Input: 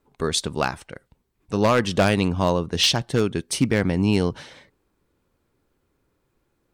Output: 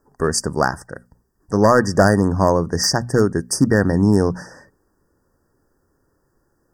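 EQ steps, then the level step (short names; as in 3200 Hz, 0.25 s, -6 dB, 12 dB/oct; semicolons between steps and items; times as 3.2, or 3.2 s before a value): brick-wall FIR band-stop 1900–4600 Hz; bell 2200 Hz +10.5 dB 0.26 oct; notches 60/120/180/240 Hz; +5.5 dB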